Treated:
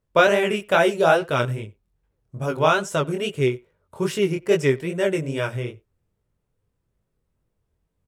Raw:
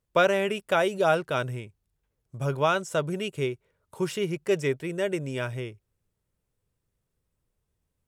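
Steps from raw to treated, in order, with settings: chorus 2.4 Hz, delay 18 ms, depth 7.3 ms; speakerphone echo 90 ms, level -23 dB; mismatched tape noise reduction decoder only; gain +8.5 dB

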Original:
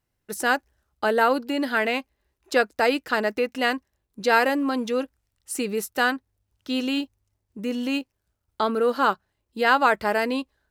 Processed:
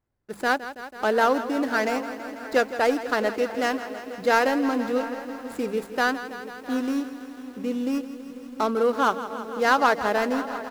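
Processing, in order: median filter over 15 samples; notches 50/100/150/200 Hz; outdoor echo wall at 120 m, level -15 dB; lo-fi delay 0.164 s, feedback 80%, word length 8-bit, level -13 dB

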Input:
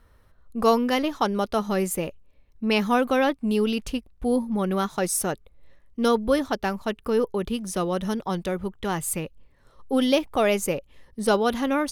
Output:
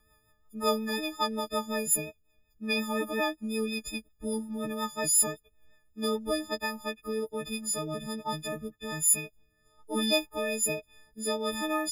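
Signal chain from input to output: frequency quantiser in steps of 6 st; rotary speaker horn 5.5 Hz, later 1.2 Hz, at 5.71; gain -7.5 dB

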